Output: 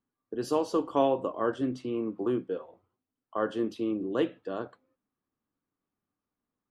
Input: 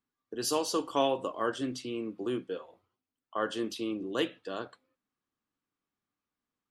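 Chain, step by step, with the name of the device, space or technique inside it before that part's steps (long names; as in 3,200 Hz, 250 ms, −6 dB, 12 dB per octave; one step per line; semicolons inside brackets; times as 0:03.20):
through cloth (high-shelf EQ 2,100 Hz −18 dB)
0:01.77–0:02.32: parametric band 1,000 Hz +7.5 dB 0.89 octaves
level +4.5 dB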